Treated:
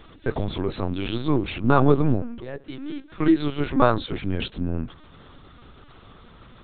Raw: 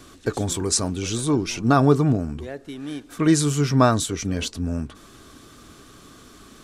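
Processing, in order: 2.22–4.14 steep high-pass 170 Hz 48 dB/oct; LPC vocoder at 8 kHz pitch kept

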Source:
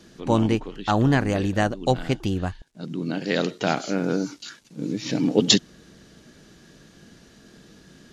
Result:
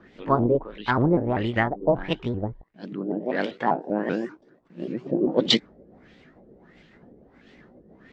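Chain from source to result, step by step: repeated pitch sweeps +4.5 st, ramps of 0.195 s; LFO low-pass sine 1.5 Hz 490–3000 Hz; gain -2 dB

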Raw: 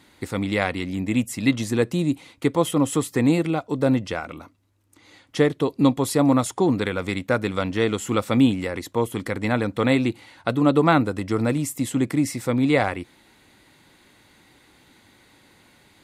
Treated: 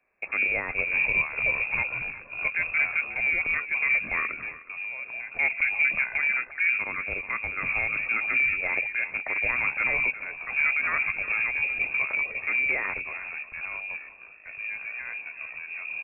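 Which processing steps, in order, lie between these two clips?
1.67–2.12 HPF 380 Hz -> 1400 Hz 12 dB/oct; compressor, threshold -20 dBFS, peak gain reduction 8.5 dB; limiter -18 dBFS, peak gain reduction 10 dB; vocal rider within 4 dB 2 s; echoes that change speed 0.48 s, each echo -5 st, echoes 2, each echo -6 dB; echo 0.364 s -12 dB; inverted band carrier 2600 Hz; three-band expander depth 70%

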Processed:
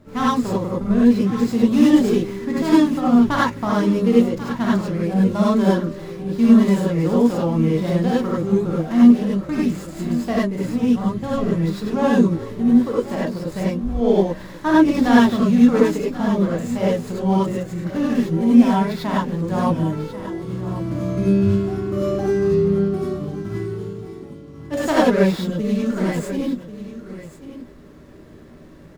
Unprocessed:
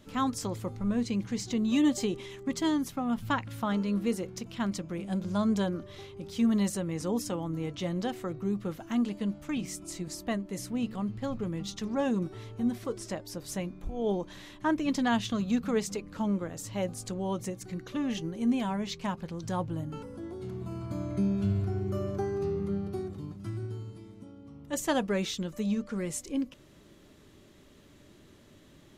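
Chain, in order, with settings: median filter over 15 samples; echo 1.089 s -13.5 dB; non-linear reverb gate 0.12 s rising, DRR -6.5 dB; gain +6 dB

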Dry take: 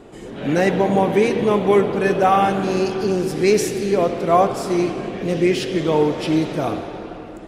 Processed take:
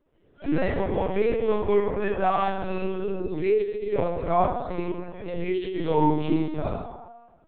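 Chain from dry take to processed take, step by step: spectral noise reduction 20 dB; FDN reverb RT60 1 s, low-frequency decay 1×, high-frequency decay 0.4×, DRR 2 dB; LPC vocoder at 8 kHz pitch kept; gain -8.5 dB

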